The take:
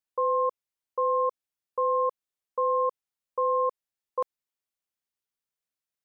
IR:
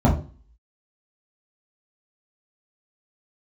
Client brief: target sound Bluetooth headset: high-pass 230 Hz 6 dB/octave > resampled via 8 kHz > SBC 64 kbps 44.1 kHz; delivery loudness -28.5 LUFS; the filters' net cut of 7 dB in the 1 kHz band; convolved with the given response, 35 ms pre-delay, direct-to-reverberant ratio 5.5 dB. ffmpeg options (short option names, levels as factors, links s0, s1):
-filter_complex "[0:a]equalizer=f=1000:t=o:g=-7,asplit=2[s0][s1];[1:a]atrim=start_sample=2205,adelay=35[s2];[s1][s2]afir=irnorm=-1:irlink=0,volume=0.0668[s3];[s0][s3]amix=inputs=2:normalize=0,highpass=f=230:p=1,aresample=8000,aresample=44100,volume=1.88" -ar 44100 -c:a sbc -b:a 64k